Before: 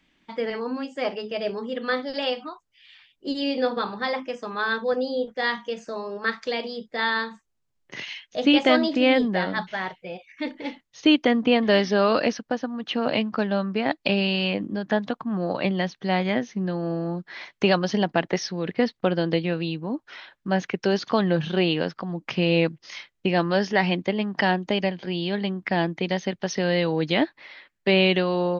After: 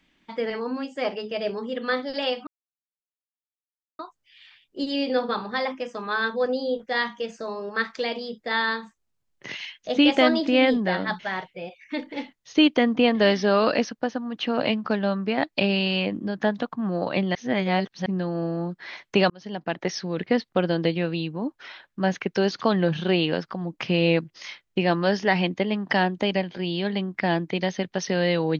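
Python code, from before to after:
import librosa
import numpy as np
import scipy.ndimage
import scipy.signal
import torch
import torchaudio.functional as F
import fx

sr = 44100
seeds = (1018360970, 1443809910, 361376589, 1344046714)

y = fx.edit(x, sr, fx.insert_silence(at_s=2.47, length_s=1.52),
    fx.reverse_span(start_s=15.83, length_s=0.71),
    fx.fade_in_span(start_s=17.78, length_s=0.75), tone=tone)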